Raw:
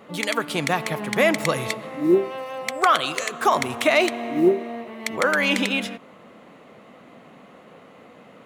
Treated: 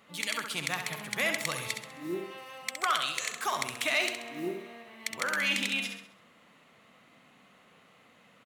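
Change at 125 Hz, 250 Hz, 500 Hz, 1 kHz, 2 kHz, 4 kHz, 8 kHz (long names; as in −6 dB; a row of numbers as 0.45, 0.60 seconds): −13.0, −16.5, −16.5, −11.5, −7.0, −4.5, −3.0 decibels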